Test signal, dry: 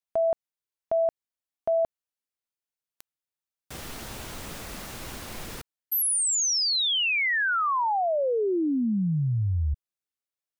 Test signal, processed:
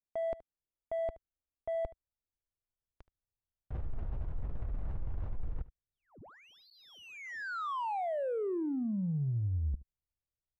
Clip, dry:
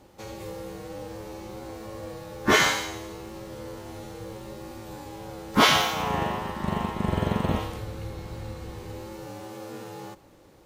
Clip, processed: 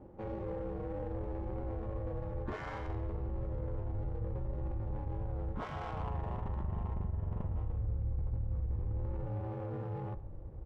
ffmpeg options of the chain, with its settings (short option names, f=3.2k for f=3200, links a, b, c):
-filter_complex "[0:a]lowpass=f=4.1k:w=0.5412,lowpass=f=4.1k:w=1.3066,asubboost=boost=11:cutoff=76,alimiter=limit=-16dB:level=0:latency=1:release=224,areverse,acompressor=threshold=-35dB:ratio=8:attack=1.5:release=59:knee=6:detection=rms,areverse,acrusher=samples=5:mix=1:aa=0.000001,adynamicsmooth=sensitivity=2.5:basefreq=630,asplit=2[a][b];[b]aecho=0:1:74:0.119[c];[a][c]amix=inputs=2:normalize=0,volume=3.5dB"